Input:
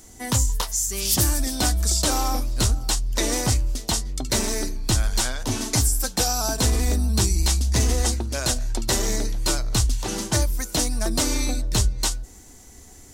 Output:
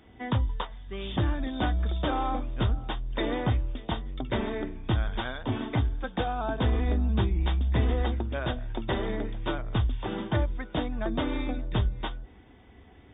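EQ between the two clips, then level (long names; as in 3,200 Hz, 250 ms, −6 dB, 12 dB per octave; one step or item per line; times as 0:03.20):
high-pass filter 53 Hz
dynamic equaliser 2,600 Hz, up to −6 dB, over −45 dBFS, Q 2
linear-phase brick-wall low-pass 3,700 Hz
−2.5 dB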